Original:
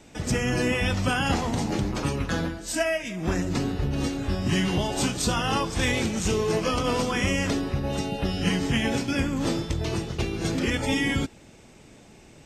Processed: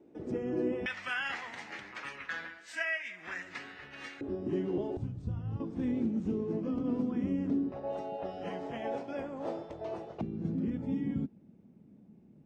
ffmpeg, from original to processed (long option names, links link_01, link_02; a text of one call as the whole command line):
ffmpeg -i in.wav -af "asetnsamples=nb_out_samples=441:pad=0,asendcmd='0.86 bandpass f 1900;4.21 bandpass f 360;4.97 bandpass f 100;5.6 bandpass f 250;7.72 bandpass f 650;10.21 bandpass f 200',bandpass=frequency=360:width_type=q:width=3:csg=0" out.wav